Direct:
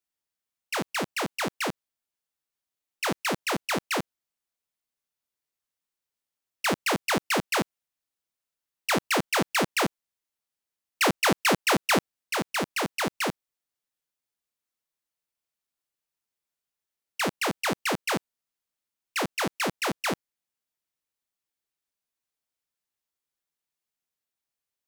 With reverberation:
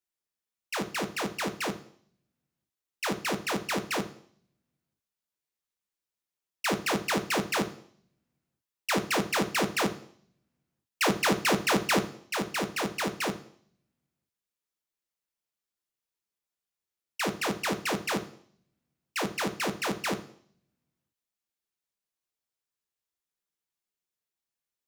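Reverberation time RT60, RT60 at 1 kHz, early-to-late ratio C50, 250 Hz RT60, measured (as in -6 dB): 0.60 s, 0.60 s, 14.5 dB, 0.65 s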